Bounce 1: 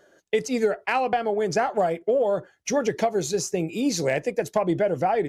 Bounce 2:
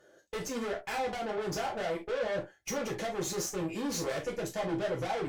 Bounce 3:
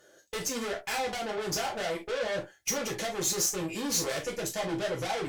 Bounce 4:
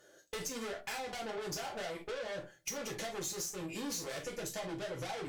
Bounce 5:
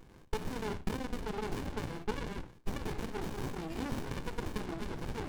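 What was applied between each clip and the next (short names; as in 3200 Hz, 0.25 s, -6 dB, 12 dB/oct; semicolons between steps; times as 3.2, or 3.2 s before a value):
tube stage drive 31 dB, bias 0.6; non-linear reverb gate 90 ms falling, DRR -1 dB; gain -4 dB
high shelf 2600 Hz +10.5 dB
compressor, threshold -34 dBFS, peak gain reduction 10 dB; shoebox room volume 300 m³, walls furnished, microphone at 0.3 m; gain -3 dB
low shelf 210 Hz -12 dB; in parallel at -1.5 dB: compressor, threshold -46 dBFS, peak gain reduction 11.5 dB; on the sum: running maximum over 65 samples; gain +6 dB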